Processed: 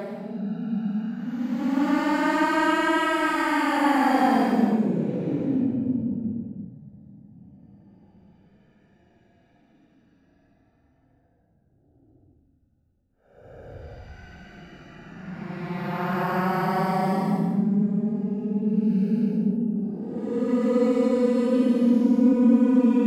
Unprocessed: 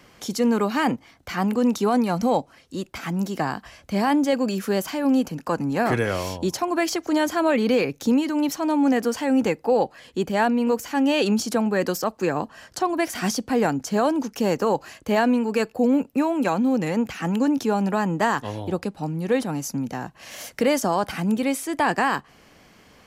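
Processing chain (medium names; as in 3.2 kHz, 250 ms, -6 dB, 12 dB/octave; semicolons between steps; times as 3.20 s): local Wiener filter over 41 samples; hum notches 50/100/150/200 Hz; Paulstretch 23×, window 0.05 s, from 0.68 s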